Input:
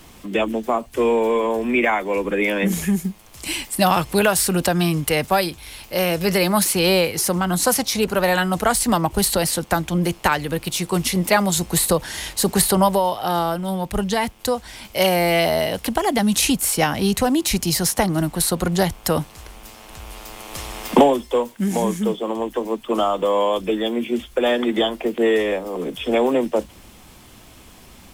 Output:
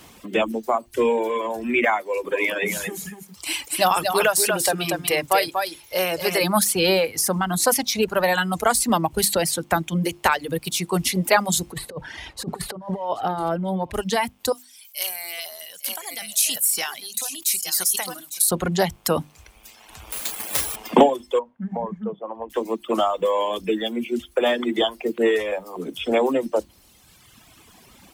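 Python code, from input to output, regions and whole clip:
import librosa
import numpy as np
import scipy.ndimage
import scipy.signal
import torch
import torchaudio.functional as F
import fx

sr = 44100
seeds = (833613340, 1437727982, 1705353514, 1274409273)

y = fx.chain(x, sr, fx.highpass(hz=140.0, slope=6),
    fx.peak_eq(hz=210.0, db=-9.5, octaves=0.78),
    fx.echo_single(ms=238, db=-3.5), at=(2.01, 6.44))
y = fx.chain(y, sr, fx.lowpass(hz=1200.0, slope=6),
    fx.over_compress(threshold_db=-23.0, ratio=-0.5),
    fx.echo_single(ms=776, db=-17.0), at=(11.72, 13.94))
y = fx.chain(y, sr, fx.differentiator(),
    fx.echo_single(ms=854, db=-9.0),
    fx.sustainer(db_per_s=46.0), at=(14.52, 18.51))
y = fx.chain(y, sr, fx.high_shelf(hz=6000.0, db=9.0),
    fx.resample_bad(factor=4, down='none', up='zero_stuff'), at=(20.12, 20.76))
y = fx.chain(y, sr, fx.lowpass(hz=1000.0, slope=12),
    fx.peak_eq(hz=340.0, db=-12.0, octaves=0.84),
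    fx.hum_notches(base_hz=50, count=5), at=(21.39, 22.5))
y = fx.hum_notches(y, sr, base_hz=50, count=7)
y = fx.dereverb_blind(y, sr, rt60_s=1.7)
y = fx.highpass(y, sr, hz=100.0, slope=6)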